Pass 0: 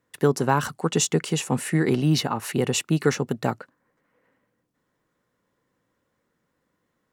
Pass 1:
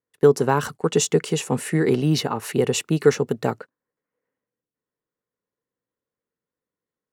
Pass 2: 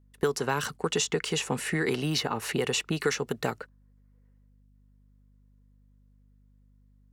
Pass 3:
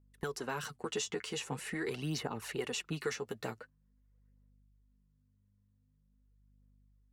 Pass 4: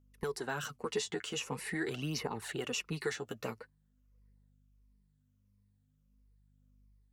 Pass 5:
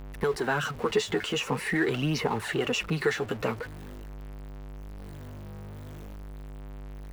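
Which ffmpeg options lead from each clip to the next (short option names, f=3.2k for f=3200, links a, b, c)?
-af "equalizer=f=440:w=3.7:g=7.5,agate=range=-18dB:threshold=-36dB:ratio=16:detection=peak"
-filter_complex "[0:a]acrossover=split=840|1700|6300[a][b][c][d];[a]acompressor=threshold=-31dB:ratio=4[e];[b]acompressor=threshold=-38dB:ratio=4[f];[c]acompressor=threshold=-30dB:ratio=4[g];[d]acompressor=threshold=-44dB:ratio=4[h];[e][f][g][h]amix=inputs=4:normalize=0,aeval=exprs='val(0)+0.000891*(sin(2*PI*50*n/s)+sin(2*PI*2*50*n/s)/2+sin(2*PI*3*50*n/s)/3+sin(2*PI*4*50*n/s)/4+sin(2*PI*5*50*n/s)/5)':c=same,volume=2dB"
-af "flanger=delay=0.1:depth=9.7:regen=20:speed=0.45:shape=sinusoidal,volume=-6dB"
-af "afftfilt=real='re*pow(10,7/40*sin(2*PI*(0.87*log(max(b,1)*sr/1024/100)/log(2)-(-1.5)*(pts-256)/sr)))':imag='im*pow(10,7/40*sin(2*PI*(0.87*log(max(b,1)*sr/1024/100)/log(2)-(-1.5)*(pts-256)/sr)))':win_size=1024:overlap=0.75"
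-af "aeval=exprs='val(0)+0.5*0.00668*sgn(val(0))':c=same,bass=f=250:g=-1,treble=f=4k:g=-10,volume=9dB"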